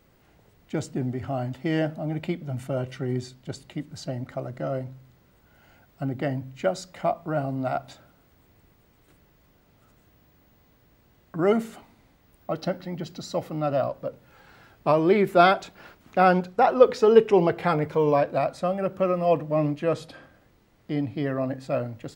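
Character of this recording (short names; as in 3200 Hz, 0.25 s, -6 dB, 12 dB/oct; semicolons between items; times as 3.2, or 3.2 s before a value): noise floor -61 dBFS; spectral tilt -6.0 dB/oct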